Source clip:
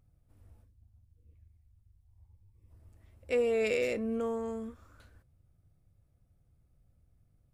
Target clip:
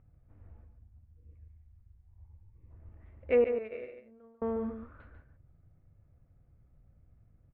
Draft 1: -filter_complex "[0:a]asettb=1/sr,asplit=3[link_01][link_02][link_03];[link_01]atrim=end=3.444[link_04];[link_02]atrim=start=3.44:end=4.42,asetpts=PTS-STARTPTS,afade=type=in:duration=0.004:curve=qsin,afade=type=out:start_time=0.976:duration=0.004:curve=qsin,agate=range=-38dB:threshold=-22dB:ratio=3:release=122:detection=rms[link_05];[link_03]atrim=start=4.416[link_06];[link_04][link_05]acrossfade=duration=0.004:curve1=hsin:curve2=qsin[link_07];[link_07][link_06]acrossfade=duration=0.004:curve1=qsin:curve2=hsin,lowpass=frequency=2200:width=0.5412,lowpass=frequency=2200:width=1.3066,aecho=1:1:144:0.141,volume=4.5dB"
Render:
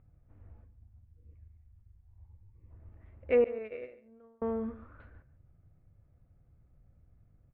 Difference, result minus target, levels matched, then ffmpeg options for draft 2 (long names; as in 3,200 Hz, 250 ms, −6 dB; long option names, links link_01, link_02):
echo-to-direct −8.5 dB
-filter_complex "[0:a]asettb=1/sr,asplit=3[link_01][link_02][link_03];[link_01]atrim=end=3.444[link_04];[link_02]atrim=start=3.44:end=4.42,asetpts=PTS-STARTPTS,afade=type=in:duration=0.004:curve=qsin,afade=type=out:start_time=0.976:duration=0.004:curve=qsin,agate=range=-38dB:threshold=-22dB:ratio=3:release=122:detection=rms[link_05];[link_03]atrim=start=4.416[link_06];[link_04][link_05]acrossfade=duration=0.004:curve1=hsin:curve2=qsin[link_07];[link_07][link_06]acrossfade=duration=0.004:curve1=qsin:curve2=hsin,lowpass=frequency=2200:width=0.5412,lowpass=frequency=2200:width=1.3066,aecho=1:1:144:0.376,volume=4.5dB"